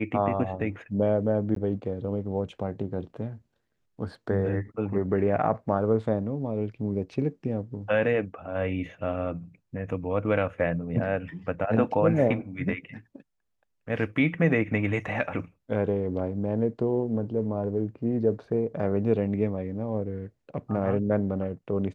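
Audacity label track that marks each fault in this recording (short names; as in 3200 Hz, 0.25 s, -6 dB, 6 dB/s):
1.550000	1.560000	gap 13 ms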